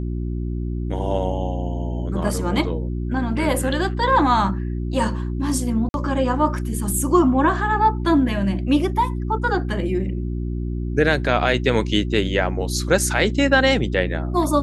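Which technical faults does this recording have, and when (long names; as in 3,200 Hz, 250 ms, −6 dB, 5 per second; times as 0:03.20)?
mains hum 60 Hz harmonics 6 −25 dBFS
0:05.89–0:05.94: drop-out 51 ms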